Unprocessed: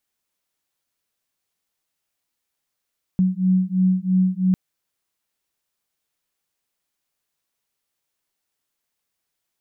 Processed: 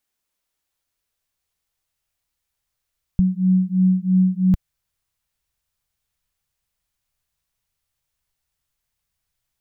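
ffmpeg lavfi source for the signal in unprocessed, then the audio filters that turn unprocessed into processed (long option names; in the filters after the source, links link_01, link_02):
-f lavfi -i "aevalsrc='0.112*(sin(2*PI*184*t)+sin(2*PI*187*t))':duration=1.35:sample_rate=44100"
-af "asubboost=boost=10.5:cutoff=92"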